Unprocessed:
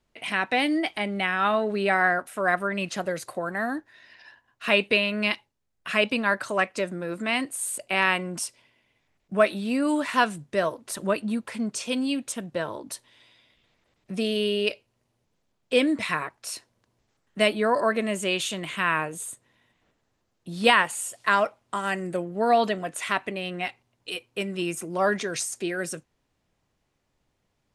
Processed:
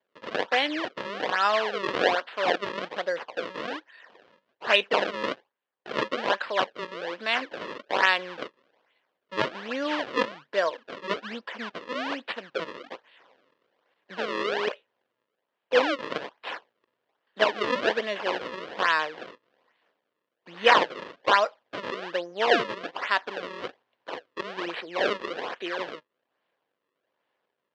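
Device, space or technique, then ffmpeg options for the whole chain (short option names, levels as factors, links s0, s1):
circuit-bent sampling toy: -af "acrusher=samples=33:mix=1:aa=0.000001:lfo=1:lforange=52.8:lforate=1.2,highpass=440,equalizer=f=510:t=q:w=4:g=5,equalizer=f=1000:t=q:w=4:g=4,equalizer=f=1700:t=q:w=4:g=6,equalizer=f=3000:t=q:w=4:g=5,lowpass=f=4600:w=0.5412,lowpass=f=4600:w=1.3066,volume=0.841"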